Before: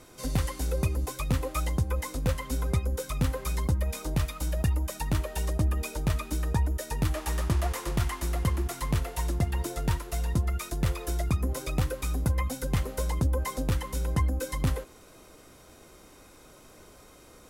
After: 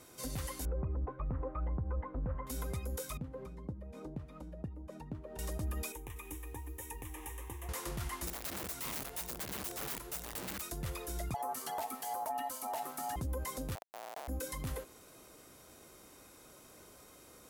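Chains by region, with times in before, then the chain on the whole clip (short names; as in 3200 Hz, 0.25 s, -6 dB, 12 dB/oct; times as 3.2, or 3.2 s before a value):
0.65–2.47 LPF 1400 Hz 24 dB/oct + low shelf 66 Hz +10.5 dB
3.17–5.39 low shelf 280 Hz +10.5 dB + compressor 3:1, threshold -30 dBFS + band-pass 340 Hz, Q 0.6
5.92–7.69 compressor 2.5:1, threshold -35 dBFS + fixed phaser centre 930 Hz, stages 8 + lo-fi delay 0.24 s, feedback 35%, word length 10-bit, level -8 dB
8.27–10.62 notches 60/120 Hz + wrapped overs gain 28 dB
11.34–13.16 high shelf 5000 Hz +6.5 dB + hard clip -20 dBFS + ring modulator 780 Hz
13.75–14.28 Schmitt trigger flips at -25 dBFS + resonant high-pass 700 Hz, resonance Q 3.9
whole clip: HPF 82 Hz 6 dB/oct; high shelf 9600 Hz +9 dB; limiter -24.5 dBFS; gain -5 dB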